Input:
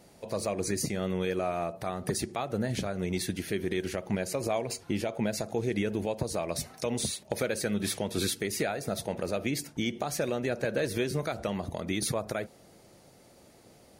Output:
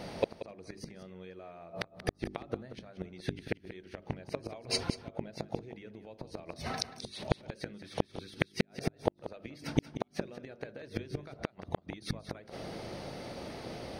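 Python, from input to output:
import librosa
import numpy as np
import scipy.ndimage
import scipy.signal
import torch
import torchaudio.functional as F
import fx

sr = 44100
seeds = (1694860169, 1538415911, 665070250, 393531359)

y = scipy.signal.savgol_filter(x, 15, 4, mode='constant')
y = fx.gate_flip(y, sr, shuts_db=-22.0, range_db=-33)
y = fx.hum_notches(y, sr, base_hz=50, count=8)
y = fx.gate_flip(y, sr, shuts_db=-29.0, range_db=-30)
y = y + 10.0 ** (-13.0 / 20.0) * np.pad(y, (int(183 * sr / 1000.0), 0))[:len(y)]
y = F.gain(torch.from_numpy(y), 15.0).numpy()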